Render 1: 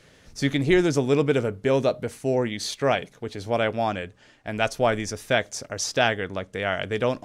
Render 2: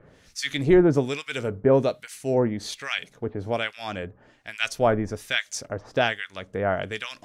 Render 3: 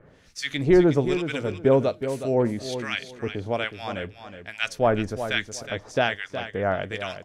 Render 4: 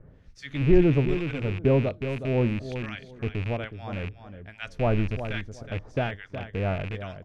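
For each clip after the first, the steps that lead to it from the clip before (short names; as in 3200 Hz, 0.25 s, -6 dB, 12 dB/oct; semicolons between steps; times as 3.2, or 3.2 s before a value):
harmonic tremolo 1.2 Hz, depth 100%, crossover 1500 Hz; gain +4 dB
high shelf 5600 Hz -6 dB; feedback echo 0.367 s, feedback 21%, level -10 dB
rattling part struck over -36 dBFS, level -16 dBFS; RIAA curve playback; gain -7.5 dB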